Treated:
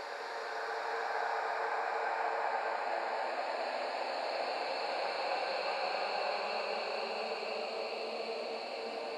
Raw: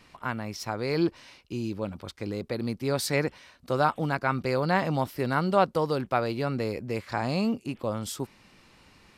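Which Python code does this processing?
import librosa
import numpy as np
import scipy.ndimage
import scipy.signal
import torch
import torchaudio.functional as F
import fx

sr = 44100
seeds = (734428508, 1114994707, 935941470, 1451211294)

y = fx.reverse_delay(x, sr, ms=158, wet_db=-5)
y = scipy.signal.sosfilt(scipy.signal.butter(4, 490.0, 'highpass', fs=sr, output='sos'), y)
y = fx.env_lowpass_down(y, sr, base_hz=2100.0, full_db=-19.5)
y = fx.echo_alternate(y, sr, ms=211, hz=810.0, feedback_pct=61, wet_db=-7.5)
y = fx.paulstretch(y, sr, seeds[0], factor=20.0, window_s=0.25, from_s=7.08)
y = y * librosa.db_to_amplitude(-5.0)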